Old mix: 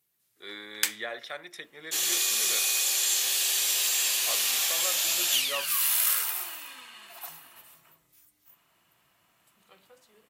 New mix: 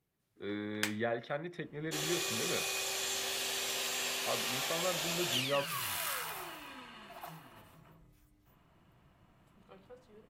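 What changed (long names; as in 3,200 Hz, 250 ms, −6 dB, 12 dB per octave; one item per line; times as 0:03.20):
speech: add bass and treble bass +7 dB, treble −5 dB
first sound: add low-shelf EQ 170 Hz −9.5 dB
master: add spectral tilt −4.5 dB per octave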